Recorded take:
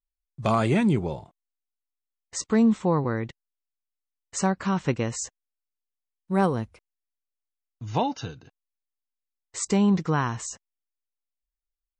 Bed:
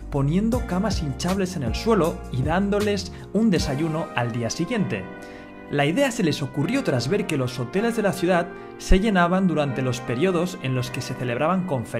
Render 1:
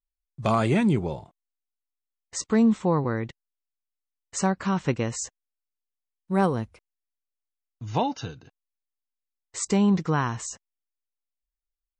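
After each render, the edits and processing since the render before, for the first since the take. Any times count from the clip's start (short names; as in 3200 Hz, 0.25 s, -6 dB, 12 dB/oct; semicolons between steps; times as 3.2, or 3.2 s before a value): nothing audible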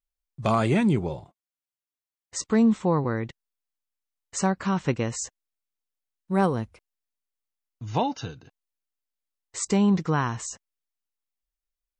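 1.09–2.36 notch comb 220 Hz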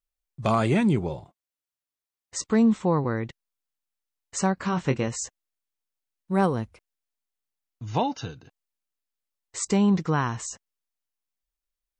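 4.55–5.08 doubler 23 ms -8.5 dB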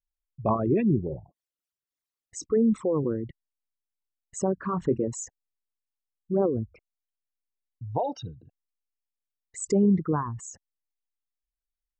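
formant sharpening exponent 3; rotary speaker horn 5.5 Hz, later 1 Hz, at 1.24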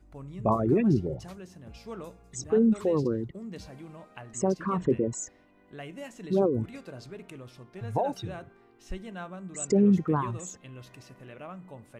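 add bed -21 dB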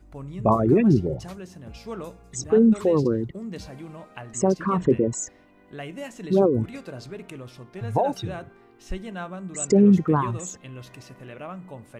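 gain +5.5 dB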